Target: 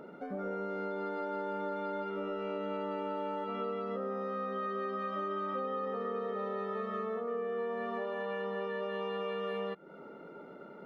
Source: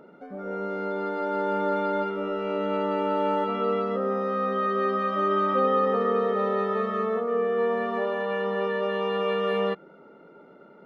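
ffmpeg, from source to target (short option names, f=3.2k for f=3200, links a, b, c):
-af "acompressor=threshold=-36dB:ratio=6,volume=1.5dB"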